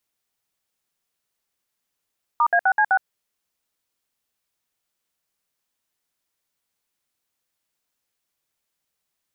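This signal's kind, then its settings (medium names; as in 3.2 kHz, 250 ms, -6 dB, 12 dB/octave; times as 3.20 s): DTMF "*A6C6", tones 66 ms, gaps 61 ms, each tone -17 dBFS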